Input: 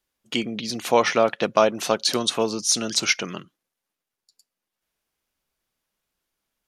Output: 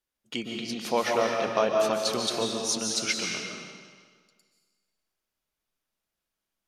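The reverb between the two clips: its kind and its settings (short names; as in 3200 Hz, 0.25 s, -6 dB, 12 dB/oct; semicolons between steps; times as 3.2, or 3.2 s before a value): digital reverb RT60 1.6 s, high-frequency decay 0.95×, pre-delay 0.105 s, DRR 0.5 dB; gain -8 dB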